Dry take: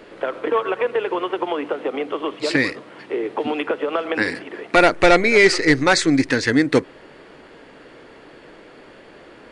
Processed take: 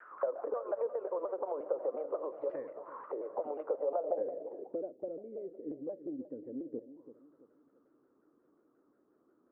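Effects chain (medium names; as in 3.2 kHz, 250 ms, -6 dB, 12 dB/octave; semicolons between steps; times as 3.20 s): bass shelf 140 Hz +8 dB; compression 5:1, threshold -24 dBFS, peak gain reduction 16 dB; auto-wah 560–1600 Hz, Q 8.4, down, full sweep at -26.5 dBFS; filtered feedback delay 335 ms, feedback 41%, level -13 dB; low-pass sweep 1.2 kHz -> 300 Hz, 3.66–4.89 s; vibrato with a chosen wave saw down 5.6 Hz, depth 160 cents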